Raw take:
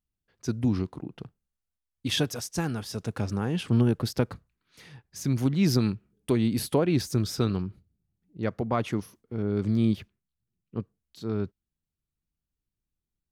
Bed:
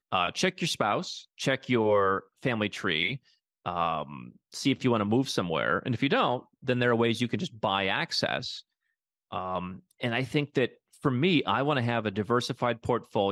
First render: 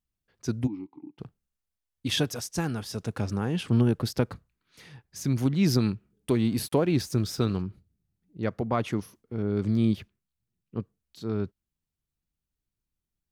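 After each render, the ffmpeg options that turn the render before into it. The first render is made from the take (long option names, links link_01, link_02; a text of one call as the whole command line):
ffmpeg -i in.wav -filter_complex "[0:a]asplit=3[link_01][link_02][link_03];[link_01]afade=type=out:start_time=0.66:duration=0.02[link_04];[link_02]asplit=3[link_05][link_06][link_07];[link_05]bandpass=frequency=300:width_type=q:width=8,volume=0dB[link_08];[link_06]bandpass=frequency=870:width_type=q:width=8,volume=-6dB[link_09];[link_07]bandpass=frequency=2240:width_type=q:width=8,volume=-9dB[link_10];[link_08][link_09][link_10]amix=inputs=3:normalize=0,afade=type=in:start_time=0.66:duration=0.02,afade=type=out:start_time=1.18:duration=0.02[link_11];[link_03]afade=type=in:start_time=1.18:duration=0.02[link_12];[link_04][link_11][link_12]amix=inputs=3:normalize=0,asettb=1/sr,asplit=3[link_13][link_14][link_15];[link_13]atrim=end=6.314[link_16];[link_14]atrim=start=6.31:end=7.62,asetpts=PTS-STARTPTS,afade=type=in:duration=0.004:curve=qsin,afade=type=out:start_time=1.306:duration=0.004:curve=qsin,aeval=exprs='sgn(val(0))*max(abs(val(0))-0.00237,0)':channel_layout=same[link_17];[link_15]atrim=start=7.616[link_18];[link_16][link_17]acrossfade=duration=0.004:curve1=hsin:curve2=qsin[link_19];[link_19][link_18]acrossfade=duration=0.004:curve1=qsin:curve2=hsin" out.wav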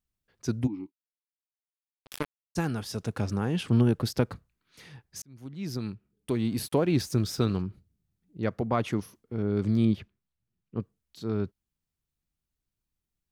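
ffmpeg -i in.wav -filter_complex "[0:a]asplit=3[link_01][link_02][link_03];[link_01]afade=type=out:start_time=0.9:duration=0.02[link_04];[link_02]acrusher=bits=2:mix=0:aa=0.5,afade=type=in:start_time=0.9:duration=0.02,afade=type=out:start_time=2.55:duration=0.02[link_05];[link_03]afade=type=in:start_time=2.55:duration=0.02[link_06];[link_04][link_05][link_06]amix=inputs=3:normalize=0,asettb=1/sr,asplit=3[link_07][link_08][link_09];[link_07]atrim=end=9.854[link_10];[link_08]atrim=start=9.85:end=10.8,asetpts=PTS-STARTPTS,afade=type=in:duration=0.004:curve=qsin,afade=type=out:start_time=0.946:duration=0.004:curve=qsin,highshelf=frequency=5500:gain=-11.5[link_11];[link_09]atrim=start=10.796[link_12];[link_10][link_11]acrossfade=duration=0.004:curve1=hsin:curve2=qsin[link_13];[link_13][link_12]acrossfade=duration=0.004:curve1=qsin:curve2=hsin,asplit=2[link_14][link_15];[link_14]atrim=end=5.22,asetpts=PTS-STARTPTS,afade=type=out:start_time=5.216:duration=0.004:curve=hsin[link_16];[link_15]atrim=start=5.22,asetpts=PTS-STARTPTS,afade=type=in:duration=1.77[link_17];[link_16][link_17]concat=n=2:v=0:a=1" out.wav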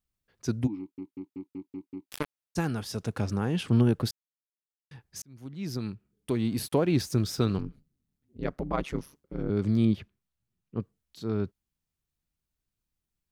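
ffmpeg -i in.wav -filter_complex "[0:a]asettb=1/sr,asplit=3[link_01][link_02][link_03];[link_01]atrim=end=7.584[link_04];[link_02]atrim=start=7.58:end=9.5,asetpts=PTS-STARTPTS,afade=type=in:duration=0.004:curve=qsin,afade=type=out:start_time=1.916:duration=0.004:curve=qsin,aeval=exprs='val(0)*sin(2*PI*71*n/s)':channel_layout=same[link_05];[link_03]atrim=start=9.496[link_06];[link_04][link_05]acrossfade=duration=0.004:curve1=hsin:curve2=qsin[link_07];[link_07][link_06]acrossfade=duration=0.004:curve1=qsin:curve2=hsin,asplit=10[link_08][link_09][link_10][link_11][link_12][link_13][link_14][link_15][link_16][link_17];[link_08]atrim=end=0.982[link_18];[link_09]atrim=start=0.788:end=0.982[link_19];[link_10]atrim=start=0.788:end=0.982[link_20];[link_11]atrim=start=0.788:end=0.982[link_21];[link_12]atrim=start=0.788:end=0.982[link_22];[link_13]atrim=start=0.788:end=0.982[link_23];[link_14]atrim=start=0.788:end=0.982[link_24];[link_15]atrim=start=2.118:end=4.11,asetpts=PTS-STARTPTS,afade=type=out:start_time=1.988:duration=0.004:curve=hsin[link_25];[link_16]atrim=start=4.11:end=4.91,asetpts=PTS-STARTPTS,volume=0[link_26];[link_17]atrim=start=4.91,asetpts=PTS-STARTPTS,afade=type=in:duration=0.004:curve=hsin[link_27];[link_18][link_19]acrossfade=duration=0.004:curve1=hsin:curve2=hsin[link_28];[link_28][link_20]acrossfade=duration=0.004:curve1=hsin:curve2=hsin[link_29];[link_29][link_21]acrossfade=duration=0.004:curve1=hsin:curve2=hsin[link_30];[link_30][link_22]acrossfade=duration=0.004:curve1=hsin:curve2=hsin[link_31];[link_31][link_23]acrossfade=duration=0.004:curve1=hsin:curve2=hsin[link_32];[link_32][link_24]acrossfade=duration=0.004:curve1=hsin:curve2=hsin[link_33];[link_25][link_26][link_27]concat=n=3:v=0:a=1[link_34];[link_33][link_34]acrossfade=duration=0.004:curve1=hsin:curve2=hsin" out.wav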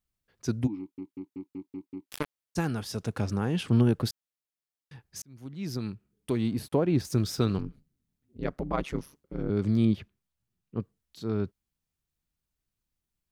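ffmpeg -i in.wav -filter_complex "[0:a]asettb=1/sr,asplit=3[link_01][link_02][link_03];[link_01]atrim=end=6.514[link_04];[link_02]atrim=start=6.51:end=7.05,asetpts=PTS-STARTPTS,afade=type=in:duration=0.004:curve=qsin,afade=type=out:start_time=0.536:duration=0.004:curve=qsin,highshelf=frequency=2000:gain=-9.5[link_05];[link_03]atrim=start=7.046[link_06];[link_04][link_05]acrossfade=duration=0.004:curve1=hsin:curve2=qsin[link_07];[link_07][link_06]acrossfade=duration=0.004:curve1=qsin:curve2=hsin" out.wav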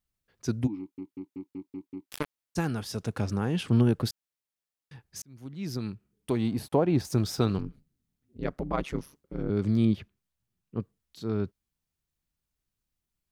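ffmpeg -i in.wav -filter_complex "[0:a]asettb=1/sr,asplit=3[link_01][link_02][link_03];[link_01]atrim=end=6.304[link_04];[link_02]atrim=start=6.3:end=7.5,asetpts=PTS-STARTPTS,afade=type=in:duration=0.004:curve=qsin,afade=type=out:start_time=1.196:duration=0.004:curve=qsin,equalizer=frequency=790:width_type=o:width=0.77:gain=6.5[link_05];[link_03]atrim=start=7.496[link_06];[link_04][link_05]acrossfade=duration=0.004:curve1=hsin:curve2=qsin[link_07];[link_07][link_06]acrossfade=duration=0.004:curve1=qsin:curve2=hsin" out.wav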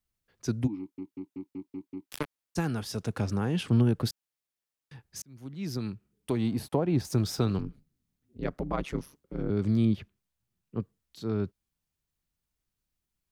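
ffmpeg -i in.wav -filter_complex "[0:a]acrossover=split=210[link_01][link_02];[link_02]acompressor=threshold=-28dB:ratio=2[link_03];[link_01][link_03]amix=inputs=2:normalize=0" out.wav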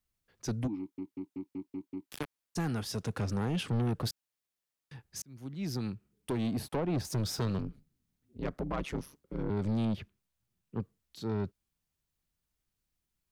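ffmpeg -i in.wav -af "asoftclip=type=tanh:threshold=-26.5dB" out.wav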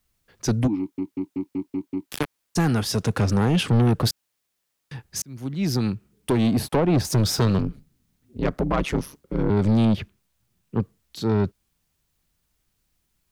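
ffmpeg -i in.wav -af "volume=12dB" out.wav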